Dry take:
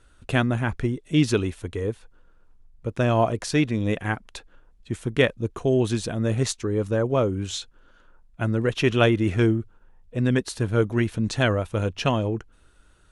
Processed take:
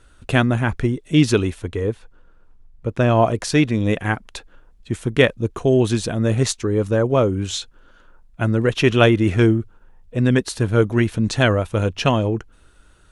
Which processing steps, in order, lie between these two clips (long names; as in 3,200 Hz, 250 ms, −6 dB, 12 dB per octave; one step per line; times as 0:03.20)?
0:01.58–0:03.23: high-shelf EQ 6,800 Hz → 4,700 Hz −7 dB
level +5 dB